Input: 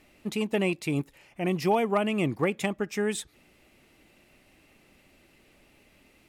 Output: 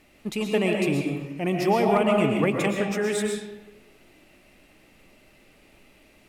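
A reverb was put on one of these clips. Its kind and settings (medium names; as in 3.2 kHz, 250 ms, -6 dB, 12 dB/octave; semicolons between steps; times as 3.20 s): algorithmic reverb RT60 1.1 s, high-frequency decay 0.6×, pre-delay 85 ms, DRR 0.5 dB; trim +1.5 dB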